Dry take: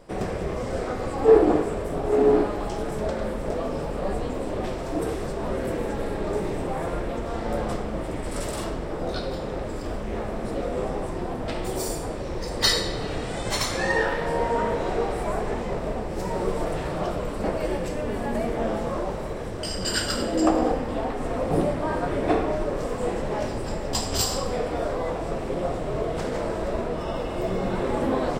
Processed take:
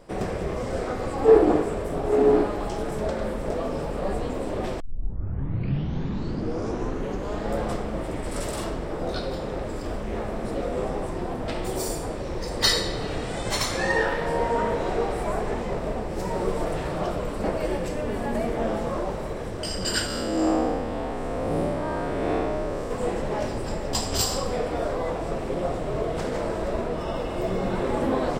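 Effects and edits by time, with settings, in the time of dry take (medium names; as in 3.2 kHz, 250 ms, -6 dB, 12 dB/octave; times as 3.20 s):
4.80 s: tape start 2.82 s
20.06–22.91 s: spectral blur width 162 ms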